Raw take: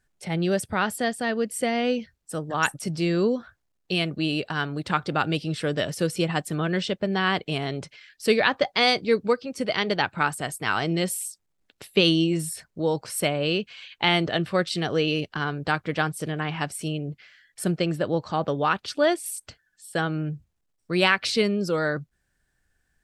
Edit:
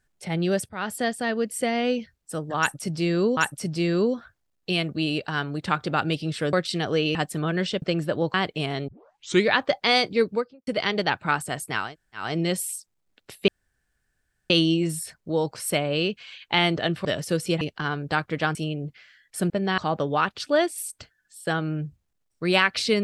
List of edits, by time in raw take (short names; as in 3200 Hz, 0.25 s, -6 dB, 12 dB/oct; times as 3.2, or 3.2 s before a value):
0.69–0.98 fade in, from -18 dB
2.59–3.37 loop, 2 plays
5.75–6.31 swap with 14.55–15.17
6.98–7.26 swap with 17.74–18.26
7.8 tape start 0.59 s
9.14–9.59 studio fade out
10.76 insert room tone 0.40 s, crossfade 0.24 s
12 insert room tone 1.02 s
16.11–16.79 cut